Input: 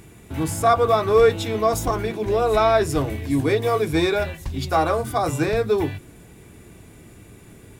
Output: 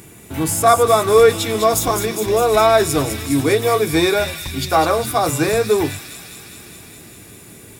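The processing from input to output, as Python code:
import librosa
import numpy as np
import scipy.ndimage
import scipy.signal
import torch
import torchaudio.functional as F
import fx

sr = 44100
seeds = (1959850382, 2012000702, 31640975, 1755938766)

p1 = fx.highpass(x, sr, hz=120.0, slope=6)
p2 = fx.high_shelf(p1, sr, hz=6700.0, db=9.0)
p3 = p2 + fx.echo_wet_highpass(p2, sr, ms=204, feedback_pct=76, hz=2800.0, wet_db=-6.0, dry=0)
y = F.gain(torch.from_numpy(p3), 4.5).numpy()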